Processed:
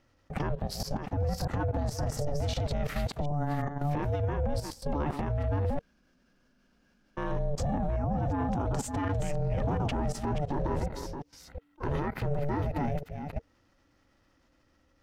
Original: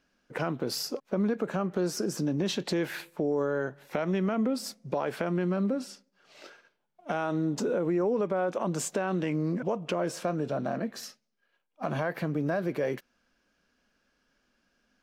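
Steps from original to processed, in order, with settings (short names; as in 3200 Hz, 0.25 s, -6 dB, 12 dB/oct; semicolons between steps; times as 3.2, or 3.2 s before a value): reverse delay 0.362 s, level -6 dB; 9.56–10.1 sample leveller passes 1; ring modulator 290 Hz; 5.79–7.17 room tone; low shelf 410 Hz +10.5 dB; notch 460 Hz, Q 13; level quantiser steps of 15 dB; limiter -29 dBFS, peak gain reduction 12 dB; gain +7.5 dB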